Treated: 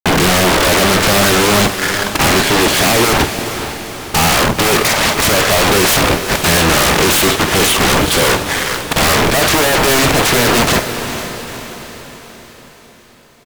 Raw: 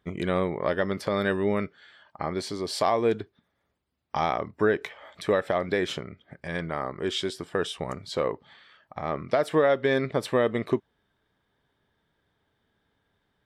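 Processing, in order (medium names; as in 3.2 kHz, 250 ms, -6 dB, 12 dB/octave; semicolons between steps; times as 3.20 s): steep low-pass 2.9 kHz 36 dB/octave; bass shelf 77 Hz +12 dB; in parallel at +0.5 dB: compression 6:1, threshold -36 dBFS, peak gain reduction 18 dB; on the sum: waveshaping leveller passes 5; bit crusher 7-bit; sine folder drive 16 dB, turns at -9.5 dBFS; doubling 49 ms -12 dB; echo that smears into a reverb 468 ms, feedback 52%, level -10 dB; trim +1 dB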